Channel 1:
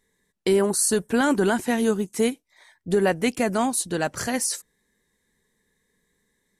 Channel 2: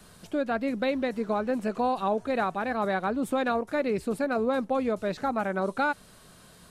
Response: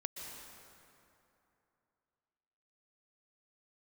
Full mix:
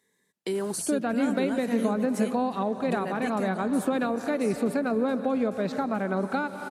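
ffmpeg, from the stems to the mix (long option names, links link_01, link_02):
-filter_complex "[0:a]alimiter=limit=-19dB:level=0:latency=1:release=373,volume=-0.5dB,afade=type=out:start_time=3.43:duration=0.26:silence=0.316228[link_01];[1:a]adelay=550,volume=2.5dB,asplit=2[link_02][link_03];[link_03]volume=-4.5dB[link_04];[2:a]atrim=start_sample=2205[link_05];[link_04][link_05]afir=irnorm=-1:irlink=0[link_06];[link_01][link_02][link_06]amix=inputs=3:normalize=0,highpass=160,acrossover=split=310[link_07][link_08];[link_08]acompressor=threshold=-30dB:ratio=3[link_09];[link_07][link_09]amix=inputs=2:normalize=0"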